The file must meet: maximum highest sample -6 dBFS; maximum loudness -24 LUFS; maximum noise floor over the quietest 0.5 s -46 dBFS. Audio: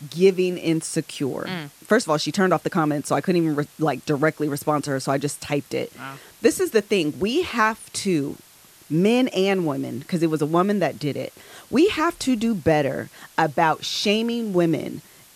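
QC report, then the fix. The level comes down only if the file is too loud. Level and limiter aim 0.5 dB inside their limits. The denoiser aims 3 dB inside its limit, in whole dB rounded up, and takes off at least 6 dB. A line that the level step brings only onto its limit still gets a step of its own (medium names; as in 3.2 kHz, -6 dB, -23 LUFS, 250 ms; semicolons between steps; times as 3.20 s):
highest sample -4.0 dBFS: fail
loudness -22.5 LUFS: fail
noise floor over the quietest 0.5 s -50 dBFS: pass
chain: trim -2 dB; peak limiter -6.5 dBFS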